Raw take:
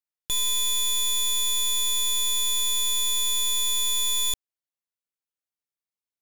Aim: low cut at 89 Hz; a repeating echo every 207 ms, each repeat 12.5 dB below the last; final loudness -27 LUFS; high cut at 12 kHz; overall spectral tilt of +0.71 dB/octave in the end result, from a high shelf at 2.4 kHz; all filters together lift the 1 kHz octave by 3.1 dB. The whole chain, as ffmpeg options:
-af "highpass=89,lowpass=12000,equalizer=f=1000:t=o:g=4,highshelf=f=2400:g=-5.5,aecho=1:1:207|414|621:0.237|0.0569|0.0137,volume=1.12"

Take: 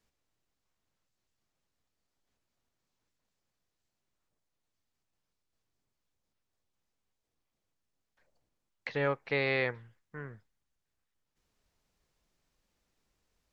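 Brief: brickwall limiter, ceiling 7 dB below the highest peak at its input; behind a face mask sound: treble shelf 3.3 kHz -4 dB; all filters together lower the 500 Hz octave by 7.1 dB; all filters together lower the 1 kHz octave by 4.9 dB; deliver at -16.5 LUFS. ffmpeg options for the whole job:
-af "equalizer=f=500:t=o:g=-7.5,equalizer=f=1000:t=o:g=-4,alimiter=level_in=1.26:limit=0.0631:level=0:latency=1,volume=0.794,highshelf=f=3300:g=-4,volume=18.8"

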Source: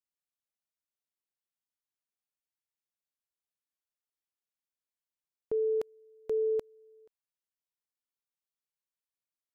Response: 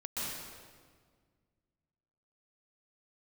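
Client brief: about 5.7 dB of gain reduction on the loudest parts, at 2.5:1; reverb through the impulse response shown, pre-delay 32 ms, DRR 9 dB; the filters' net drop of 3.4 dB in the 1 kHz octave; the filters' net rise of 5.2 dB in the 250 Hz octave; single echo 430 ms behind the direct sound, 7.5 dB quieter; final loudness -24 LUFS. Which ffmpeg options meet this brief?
-filter_complex "[0:a]equalizer=f=250:t=o:g=8.5,equalizer=f=1000:t=o:g=-5.5,acompressor=threshold=0.02:ratio=2.5,aecho=1:1:430:0.422,asplit=2[s0][s1];[1:a]atrim=start_sample=2205,adelay=32[s2];[s1][s2]afir=irnorm=-1:irlink=0,volume=0.237[s3];[s0][s3]amix=inputs=2:normalize=0,volume=3.98"

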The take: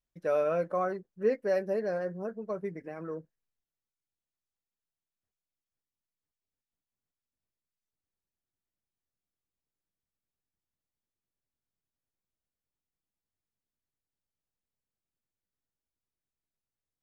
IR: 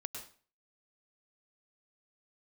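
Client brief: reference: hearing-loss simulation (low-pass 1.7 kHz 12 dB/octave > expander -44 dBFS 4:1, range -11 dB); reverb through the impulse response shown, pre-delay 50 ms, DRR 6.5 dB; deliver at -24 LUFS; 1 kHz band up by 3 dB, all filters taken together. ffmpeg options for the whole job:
-filter_complex "[0:a]equalizer=f=1000:t=o:g=5,asplit=2[s0][s1];[1:a]atrim=start_sample=2205,adelay=50[s2];[s1][s2]afir=irnorm=-1:irlink=0,volume=0.562[s3];[s0][s3]amix=inputs=2:normalize=0,lowpass=1700,agate=range=0.282:threshold=0.00631:ratio=4,volume=2"

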